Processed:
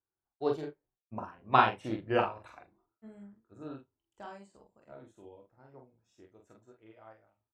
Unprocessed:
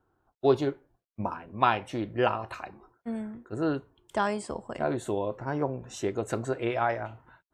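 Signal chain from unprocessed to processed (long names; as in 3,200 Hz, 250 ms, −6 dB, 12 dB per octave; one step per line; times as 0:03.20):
source passing by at 0:01.74, 23 m/s, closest 15 metres
on a send: ambience of single reflections 24 ms −10 dB, 45 ms −3 dB, 79 ms −16 dB
on the sum: expander for the loud parts 1.5 to 1, over −53 dBFS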